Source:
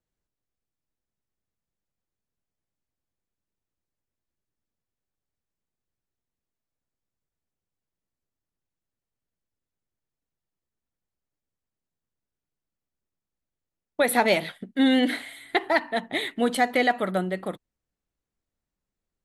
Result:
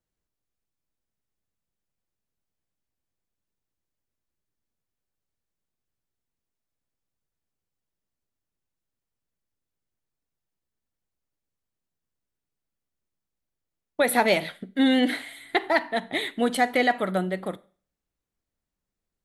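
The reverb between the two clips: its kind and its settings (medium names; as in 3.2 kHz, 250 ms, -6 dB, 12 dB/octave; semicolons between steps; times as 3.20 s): Schroeder reverb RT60 0.42 s, combs from 32 ms, DRR 19 dB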